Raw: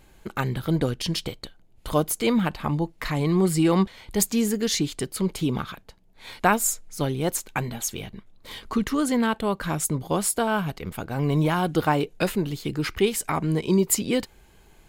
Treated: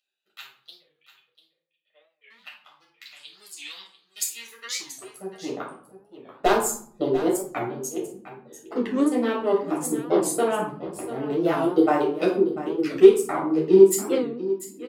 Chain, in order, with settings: Wiener smoothing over 41 samples; reverb removal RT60 1.9 s; 0.79–2.31 vocal tract filter e; in parallel at -10 dB: soft clip -21.5 dBFS, distortion -11 dB; on the sum: high-pass sweep 3500 Hz -> 350 Hz, 4.02–5.79; wavefolder -5.5 dBFS; echo 0.693 s -13.5 dB; reverb RT60 0.55 s, pre-delay 7 ms, DRR -4 dB; record warp 45 rpm, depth 160 cents; gain -11.5 dB

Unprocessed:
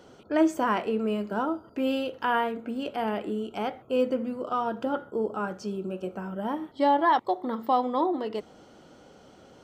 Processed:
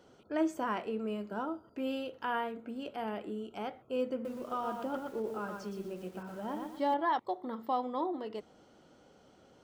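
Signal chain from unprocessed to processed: 4.13–6.94 lo-fi delay 0.118 s, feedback 35%, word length 8-bit, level -4 dB; gain -8.5 dB

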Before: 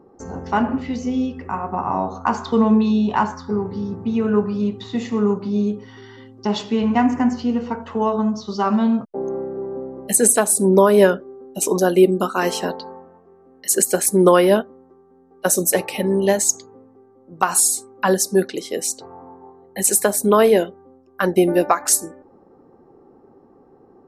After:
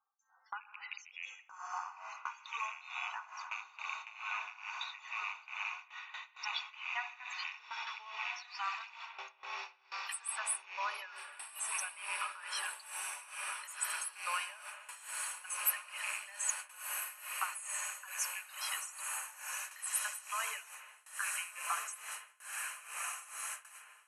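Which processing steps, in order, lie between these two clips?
rattling part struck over -23 dBFS, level -17 dBFS; HPF 1200 Hz 24 dB/oct; loudest bins only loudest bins 32; compressor 3:1, threshold -45 dBFS, peak gain reduction 23.5 dB; diffused feedback echo 1.405 s, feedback 77%, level -4 dB; gate with hold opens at -35 dBFS; bell 12000 Hz +9 dB 0.32 oct; on a send at -9 dB: reverb RT60 1.3 s, pre-delay 65 ms; on the sum: tremolo 2.3 Hz, depth 84%; gain +4.5 dB

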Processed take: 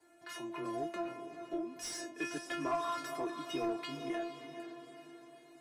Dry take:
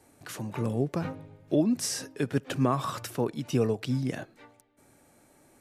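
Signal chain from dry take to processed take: 0.86–1.76 compressor, threshold -32 dBFS, peak gain reduction 12.5 dB; diffused feedback echo 0.459 s, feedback 49%, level -10 dB; frequency shift +15 Hz; metallic resonator 340 Hz, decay 0.35 s, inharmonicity 0.002; overdrive pedal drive 14 dB, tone 2000 Hz, clips at -33.5 dBFS; gain +9 dB

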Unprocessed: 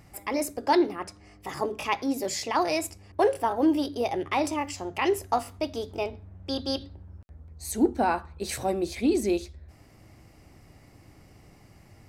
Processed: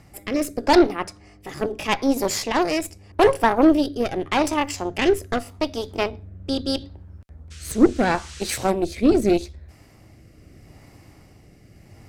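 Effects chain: added harmonics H 3 -23 dB, 6 -17 dB, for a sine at -10.5 dBFS; 7.5–8.69 band noise 1200–8100 Hz -50 dBFS; rotary speaker horn 0.8 Hz; gain +8.5 dB

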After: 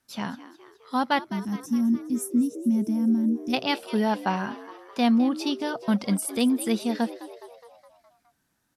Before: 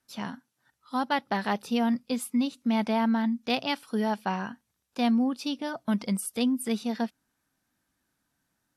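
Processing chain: spectral gain 1.25–3.53, 370–5200 Hz -24 dB; frequency-shifting echo 0.208 s, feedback 57%, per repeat +81 Hz, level -15.5 dB; gain +3.5 dB

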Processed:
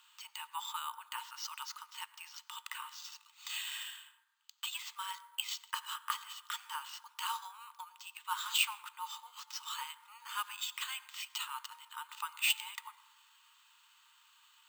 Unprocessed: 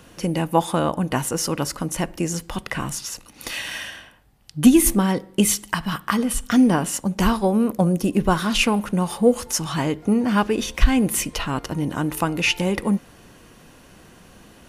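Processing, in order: rippled Chebyshev high-pass 880 Hz, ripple 9 dB; bell 1300 Hz -4 dB 1.8 oct; on a send at -16.5 dB: reverb RT60 1.2 s, pre-delay 76 ms; on the sum: careless resampling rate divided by 4×, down filtered, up hold; gain -4.5 dB

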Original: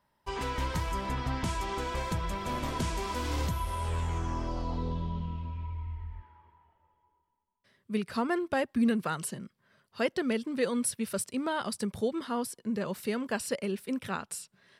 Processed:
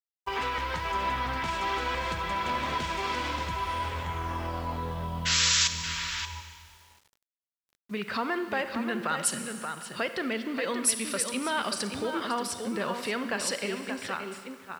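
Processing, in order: ending faded out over 1.46 s; bell 70 Hz +6.5 dB 1 oct; limiter -25.5 dBFS, peak gain reduction 8.5 dB; painted sound noise, 5.25–5.68, 1100–7800 Hz -35 dBFS; tilt +4 dB/oct; on a send: echo 0.579 s -7.5 dB; on the sum: gate -49 dBFS, range -8 dB; low-pass opened by the level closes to 1700 Hz, open at -17 dBFS; Schroeder reverb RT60 1.7 s, combs from 32 ms, DRR 10 dB; in parallel at 0 dB: compressor, threshold -41 dBFS, peak gain reduction 15 dB; on the sum: bit-crush 10-bit; gain +3.5 dB

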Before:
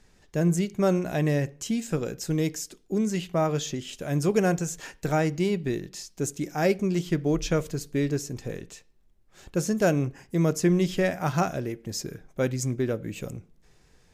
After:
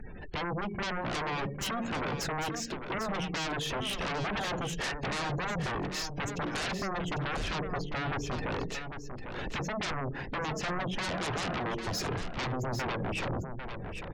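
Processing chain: LPF 3000 Hz 12 dB/oct; spectral gate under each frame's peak -25 dB strong; compressor 4:1, threshold -36 dBFS, peak gain reduction 16 dB; sine folder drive 19 dB, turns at -24 dBFS; on a send: echo 0.799 s -8 dB; on the sum: gain -6.5 dB

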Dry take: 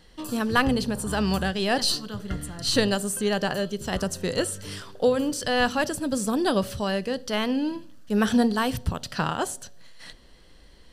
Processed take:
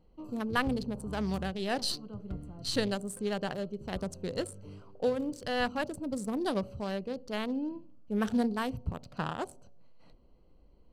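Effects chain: Wiener smoothing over 25 samples; gain -7.5 dB

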